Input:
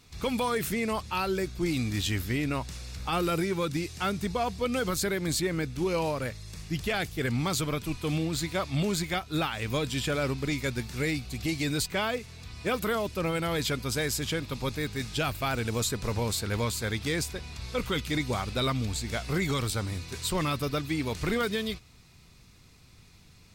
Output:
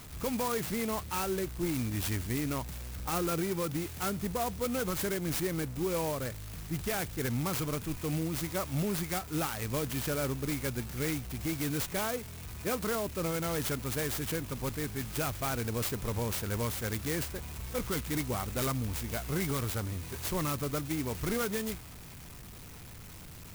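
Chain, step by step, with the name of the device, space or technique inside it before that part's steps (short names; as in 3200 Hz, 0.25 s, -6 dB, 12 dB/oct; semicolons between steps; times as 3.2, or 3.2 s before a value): early CD player with a faulty converter (zero-crossing step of -38.5 dBFS; clock jitter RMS 0.078 ms); gain -4.5 dB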